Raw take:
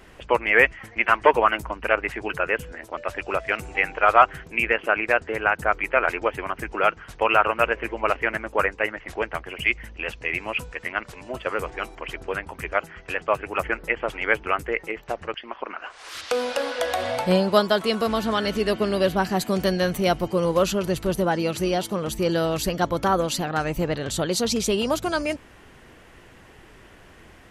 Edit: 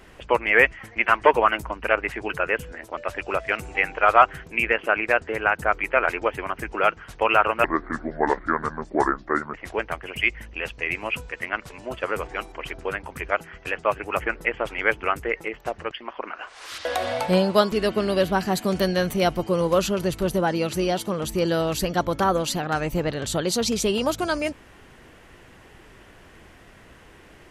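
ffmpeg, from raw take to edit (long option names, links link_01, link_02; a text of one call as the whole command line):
ffmpeg -i in.wav -filter_complex "[0:a]asplit=5[link_01][link_02][link_03][link_04][link_05];[link_01]atrim=end=7.644[link_06];[link_02]atrim=start=7.64:end=8.97,asetpts=PTS-STARTPTS,asetrate=30870,aresample=44100[link_07];[link_03]atrim=start=8.966:end=16.282[link_08];[link_04]atrim=start=16.828:end=17.702[link_09];[link_05]atrim=start=18.558[link_10];[link_06][link_07]acrossfade=duration=0.004:curve1=hsin:curve2=hsin[link_11];[link_11][link_08]acrossfade=duration=0.004:curve1=hsin:curve2=hsin[link_12];[link_12][link_09]acrossfade=duration=0.004:curve1=hsin:curve2=hsin[link_13];[link_13][link_10]acrossfade=duration=0.004:curve1=hsin:curve2=hsin" out.wav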